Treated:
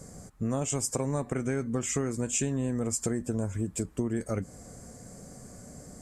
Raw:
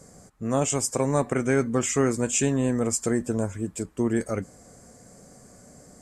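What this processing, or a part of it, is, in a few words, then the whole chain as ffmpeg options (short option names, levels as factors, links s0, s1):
ASMR close-microphone chain: -af "lowshelf=f=220:g=7.5,acompressor=threshold=0.0447:ratio=6,highshelf=f=7700:g=4"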